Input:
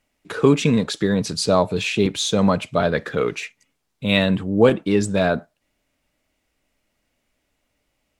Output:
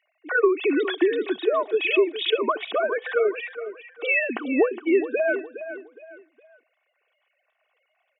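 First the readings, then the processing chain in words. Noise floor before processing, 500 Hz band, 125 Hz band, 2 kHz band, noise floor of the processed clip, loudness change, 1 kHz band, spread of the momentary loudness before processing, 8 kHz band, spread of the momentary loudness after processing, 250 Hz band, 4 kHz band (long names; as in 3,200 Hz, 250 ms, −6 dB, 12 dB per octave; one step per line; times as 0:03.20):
−73 dBFS, −1.5 dB, below −35 dB, +1.5 dB, −74 dBFS, −3.5 dB, −3.5 dB, 8 LU, below −40 dB, 13 LU, −7.0 dB, −6.0 dB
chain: three sine waves on the formant tracks
high-pass filter 330 Hz 24 dB per octave
downward compressor 6 to 1, threshold −30 dBFS, peak gain reduction 22 dB
comb filter 2.7 ms, depth 58%
repeating echo 414 ms, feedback 32%, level −12 dB
level +8.5 dB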